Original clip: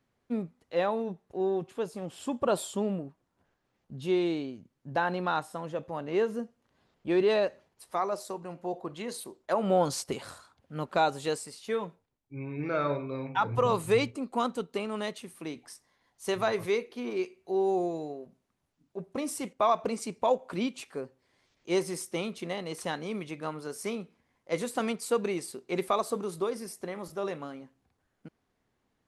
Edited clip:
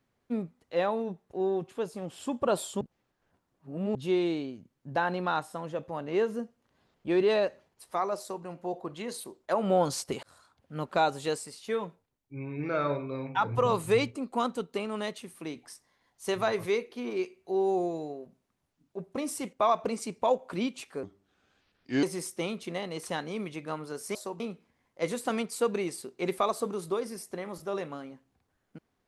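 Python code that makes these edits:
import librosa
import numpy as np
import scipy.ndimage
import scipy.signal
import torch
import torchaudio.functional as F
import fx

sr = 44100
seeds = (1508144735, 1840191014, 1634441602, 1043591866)

y = fx.edit(x, sr, fx.reverse_span(start_s=2.81, length_s=1.14),
    fx.duplicate(start_s=8.19, length_s=0.25, to_s=23.9),
    fx.fade_in_span(start_s=10.23, length_s=0.56, curve='qsin'),
    fx.speed_span(start_s=21.03, length_s=0.75, speed=0.75), tone=tone)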